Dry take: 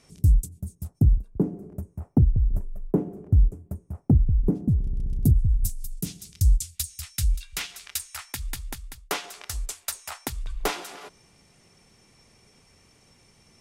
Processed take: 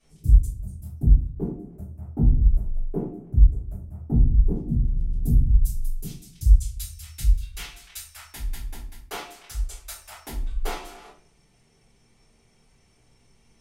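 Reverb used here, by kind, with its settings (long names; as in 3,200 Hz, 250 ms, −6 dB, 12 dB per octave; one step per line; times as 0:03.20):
rectangular room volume 34 cubic metres, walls mixed, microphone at 2.6 metres
level −18 dB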